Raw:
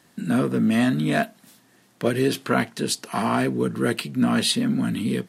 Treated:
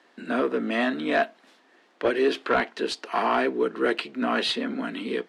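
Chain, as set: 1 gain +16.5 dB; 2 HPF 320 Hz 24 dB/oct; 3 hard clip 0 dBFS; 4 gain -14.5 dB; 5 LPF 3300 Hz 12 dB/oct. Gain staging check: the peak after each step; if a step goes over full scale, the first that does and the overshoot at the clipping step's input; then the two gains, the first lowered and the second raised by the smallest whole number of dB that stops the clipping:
+9.5, +8.5, 0.0, -14.5, -14.0 dBFS; step 1, 8.5 dB; step 1 +7.5 dB, step 4 -5.5 dB

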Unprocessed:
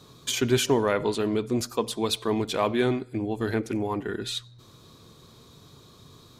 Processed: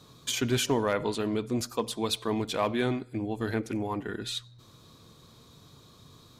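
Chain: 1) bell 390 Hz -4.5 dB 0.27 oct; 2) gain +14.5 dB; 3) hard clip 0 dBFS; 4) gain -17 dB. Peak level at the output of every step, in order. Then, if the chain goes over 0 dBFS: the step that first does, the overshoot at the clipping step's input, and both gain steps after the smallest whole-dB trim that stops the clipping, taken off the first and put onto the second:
-11.5, +3.0, 0.0, -17.0 dBFS; step 2, 3.0 dB; step 2 +11.5 dB, step 4 -14 dB

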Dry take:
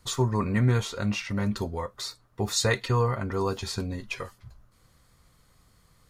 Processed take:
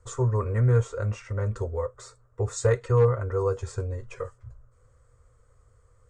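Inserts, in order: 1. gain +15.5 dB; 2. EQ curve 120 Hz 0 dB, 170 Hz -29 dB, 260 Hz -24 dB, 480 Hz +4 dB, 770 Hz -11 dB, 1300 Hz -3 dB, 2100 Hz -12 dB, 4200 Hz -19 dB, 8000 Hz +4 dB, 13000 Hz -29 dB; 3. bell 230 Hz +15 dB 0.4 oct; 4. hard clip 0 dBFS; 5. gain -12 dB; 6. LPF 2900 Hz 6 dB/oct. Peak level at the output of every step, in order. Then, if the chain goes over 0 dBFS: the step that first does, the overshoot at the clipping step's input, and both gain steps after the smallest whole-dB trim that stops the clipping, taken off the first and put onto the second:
+4.5, +2.5, +3.0, 0.0, -12.0, -12.0 dBFS; step 1, 3.0 dB; step 1 +12.5 dB, step 5 -9 dB

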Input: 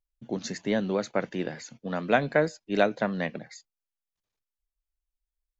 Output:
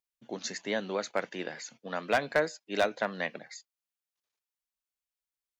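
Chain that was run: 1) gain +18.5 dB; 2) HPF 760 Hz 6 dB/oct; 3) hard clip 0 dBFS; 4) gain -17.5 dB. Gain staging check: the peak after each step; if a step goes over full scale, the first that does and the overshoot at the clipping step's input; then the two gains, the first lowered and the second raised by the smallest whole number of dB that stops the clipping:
+10.5, +8.5, 0.0, -17.5 dBFS; step 1, 8.5 dB; step 1 +9.5 dB, step 4 -8.5 dB

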